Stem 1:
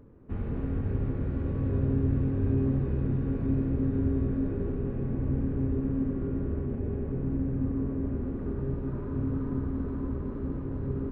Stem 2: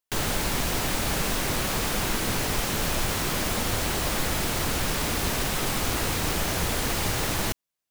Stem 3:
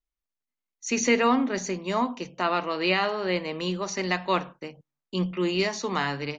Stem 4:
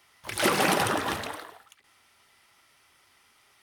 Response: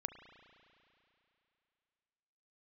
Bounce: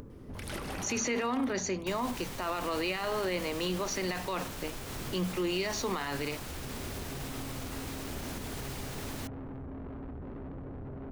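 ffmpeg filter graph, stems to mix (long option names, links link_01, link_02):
-filter_complex "[0:a]alimiter=level_in=2dB:limit=-24dB:level=0:latency=1:release=15,volume=-2dB,asoftclip=type=tanh:threshold=-39.5dB,volume=-8dB[link_01];[1:a]alimiter=limit=-22dB:level=0:latency=1:release=191,adelay=1750,volume=-9.5dB[link_02];[2:a]highpass=180,volume=-0.5dB[link_03];[3:a]acrossover=split=170[link_04][link_05];[link_05]acompressor=threshold=-33dB:ratio=2.5[link_06];[link_04][link_06]amix=inputs=2:normalize=0,adelay=100,volume=-9dB[link_07];[link_01][link_03]amix=inputs=2:normalize=0,acompressor=mode=upward:threshold=-35dB:ratio=2.5,alimiter=limit=-18.5dB:level=0:latency=1,volume=0dB[link_08];[link_02][link_07][link_08]amix=inputs=3:normalize=0,alimiter=limit=-23.5dB:level=0:latency=1:release=23"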